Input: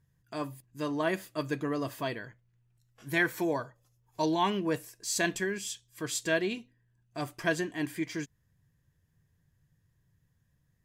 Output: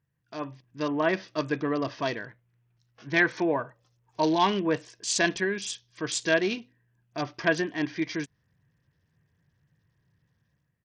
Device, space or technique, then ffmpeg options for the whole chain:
Bluetooth headset: -af "highpass=frequency=150:poles=1,dynaudnorm=framelen=170:gausssize=5:maxgain=9dB,aresample=16000,aresample=44100,volume=-4dB" -ar 48000 -c:a sbc -b:a 64k

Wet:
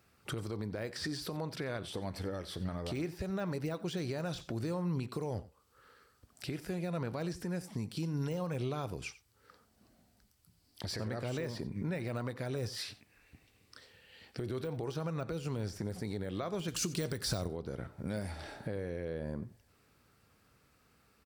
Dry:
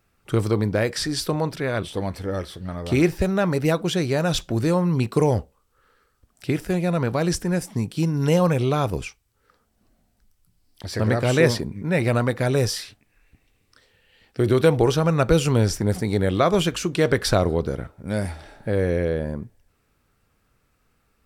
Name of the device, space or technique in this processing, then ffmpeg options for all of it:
broadcast voice chain: -filter_complex "[0:a]highpass=72,deesser=0.7,acompressor=threshold=-34dB:ratio=3,equalizer=frequency=4600:width_type=o:width=0.41:gain=4,alimiter=level_in=4dB:limit=-24dB:level=0:latency=1:release=190,volume=-4dB,asettb=1/sr,asplit=3[link_01][link_02][link_03];[link_01]atrim=end=16.684[link_04];[link_02]atrim=start=16.68:end=17.48,asetpts=PTS-STARTPTS,afade=type=in:duration=0.004:curve=qsin,afade=type=out:start_time=0.796:duration=0.004:curve=qsin,bass=frequency=250:gain=6,treble=frequency=4000:gain=14[link_05];[link_03]atrim=start=17.476[link_06];[link_04][link_05]acrossfade=duration=0.004:curve1=hsin:curve2=qsin[link_07];[link_07][link_06]acrossfade=duration=0.004:curve1=qsin:curve2=hsin,aecho=1:1:90:0.126"

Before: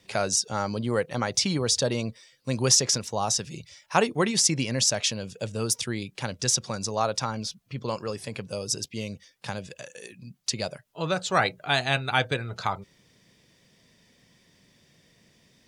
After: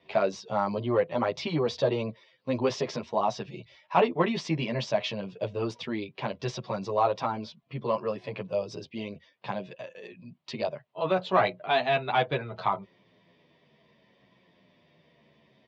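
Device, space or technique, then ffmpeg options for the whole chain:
barber-pole flanger into a guitar amplifier: -filter_complex "[0:a]asplit=2[link_01][link_02];[link_02]adelay=10,afreqshift=-0.66[link_03];[link_01][link_03]amix=inputs=2:normalize=1,asoftclip=type=tanh:threshold=-17dB,highpass=88,equalizer=frequency=96:width_type=q:width=4:gain=-7,equalizer=frequency=380:width_type=q:width=4:gain=4,equalizer=frequency=640:width_type=q:width=4:gain=8,equalizer=frequency=1000:width_type=q:width=4:gain=7,equalizer=frequency=1500:width_type=q:width=4:gain=-5,lowpass=frequency=3500:width=0.5412,lowpass=frequency=3500:width=1.3066,volume=1.5dB"

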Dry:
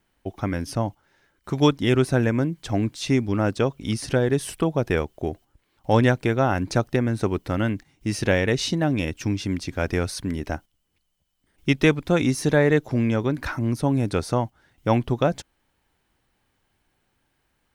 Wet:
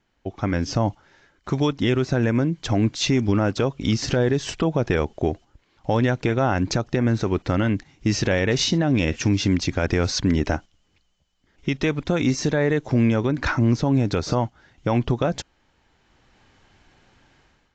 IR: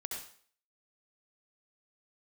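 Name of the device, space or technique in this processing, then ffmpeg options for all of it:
low-bitrate web radio: -af "dynaudnorm=framelen=470:gausssize=3:maxgain=14.5dB,alimiter=limit=-11dB:level=0:latency=1:release=122" -ar 16000 -c:a aac -b:a 48k

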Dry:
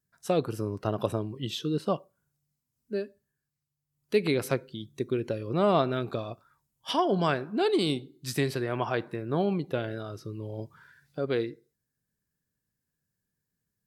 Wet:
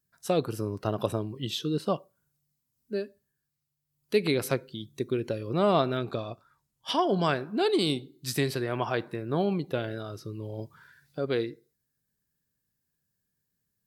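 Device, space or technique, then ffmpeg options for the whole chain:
presence and air boost: -filter_complex "[0:a]asettb=1/sr,asplit=3[link_01][link_02][link_03];[link_01]atrim=end=5.974[link_04];[link_02]atrim=start=5.97:end=7.01,asetpts=PTS-STARTPTS,afade=type=in:duration=0.004:curve=qsin,afade=type=out:start_time=1.036:duration=0.004:curve=qsin,highshelf=frequency=11000:gain=-10.5[link_05];[link_03]atrim=start=7.006[link_06];[link_04][link_05]acrossfade=duration=0.004:curve1=hsin:curve2=qsin[link_07];[link_07][link_06]acrossfade=duration=0.004:curve1=qsin:curve2=hsin,equalizer=frequency=4200:width_type=o:width=0.77:gain=2.5,highshelf=frequency=11000:gain=7"

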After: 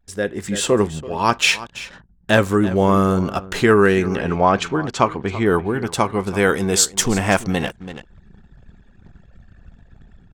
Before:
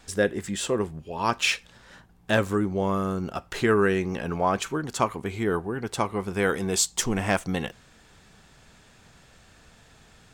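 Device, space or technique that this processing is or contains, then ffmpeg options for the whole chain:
voice memo with heavy noise removal: -filter_complex "[0:a]asettb=1/sr,asplit=3[link_01][link_02][link_03];[link_01]atrim=end=4.154[link_04];[link_02]atrim=start=4.15:end=5.46,asetpts=PTS-STARTPTS,afade=type=in:duration=0.004:curve=qsin,afade=type=out:start_time=1.306:duration=0.004:curve=qsin,lowpass=5300[link_05];[link_03]atrim=start=5.456[link_06];[link_04][link_05]acrossfade=duration=0.004:curve1=hsin:curve2=qsin[link_07];[link_07][link_06]acrossfade=duration=0.004:curve1=qsin:curve2=hsin,aecho=1:1:333:0.15,anlmdn=0.01,dynaudnorm=framelen=120:gausssize=7:maxgain=16.5dB,volume=-1dB"

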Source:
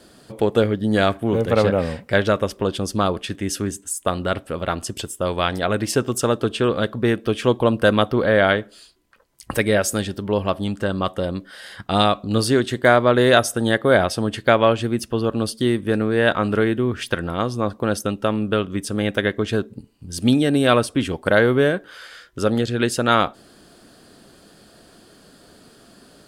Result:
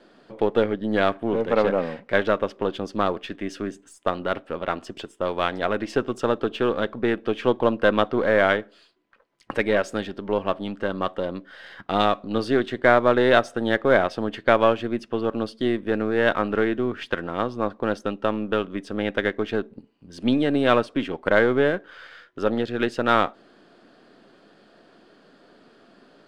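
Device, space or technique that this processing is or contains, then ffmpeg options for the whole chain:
crystal radio: -af "highpass=220,lowpass=2900,aeval=exprs='if(lt(val(0),0),0.708*val(0),val(0))':channel_layout=same,volume=-1dB"

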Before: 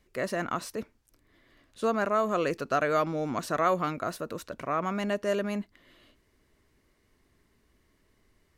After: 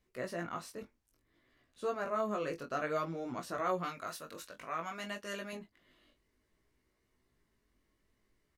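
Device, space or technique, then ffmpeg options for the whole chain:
double-tracked vocal: -filter_complex "[0:a]asettb=1/sr,asplit=3[link_01][link_02][link_03];[link_01]atrim=end=3.834[link_04];[link_02]atrim=start=3.83:end=5.53,asetpts=PTS-STARTPTS,afade=type=in:duration=0.004:curve=qsin,afade=type=out:start_time=1.696:duration=0.004:curve=qsin,tiltshelf=frequency=970:gain=-6.5[link_05];[link_03]atrim=start=5.526[link_06];[link_04][link_05]acrossfade=duration=0.004:curve1=hsin:curve2=qsin[link_07];[link_07][link_06]acrossfade=duration=0.004:curve1=qsin:curve2=hsin,asplit=2[link_08][link_09];[link_09]adelay=24,volume=-10.5dB[link_10];[link_08][link_10]amix=inputs=2:normalize=0,flanger=delay=15.5:depth=4.9:speed=0.57,volume=-6.5dB"

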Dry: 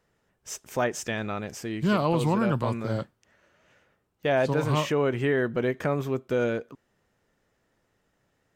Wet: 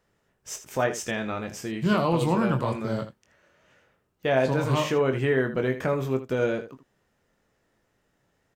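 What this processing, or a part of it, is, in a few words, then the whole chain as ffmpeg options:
slapback doubling: -filter_complex "[0:a]asplit=3[link_01][link_02][link_03];[link_02]adelay=23,volume=-7dB[link_04];[link_03]adelay=80,volume=-12dB[link_05];[link_01][link_04][link_05]amix=inputs=3:normalize=0"

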